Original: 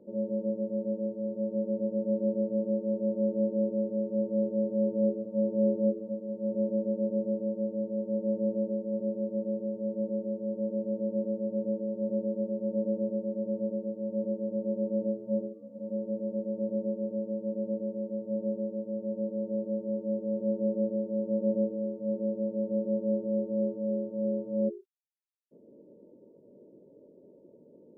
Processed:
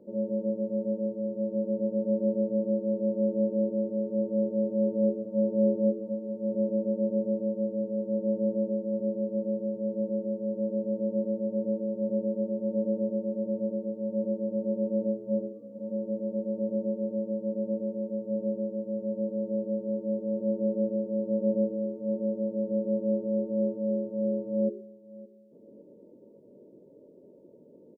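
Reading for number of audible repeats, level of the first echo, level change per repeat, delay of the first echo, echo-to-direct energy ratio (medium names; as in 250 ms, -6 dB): 2, -20.0 dB, -10.0 dB, 566 ms, -19.5 dB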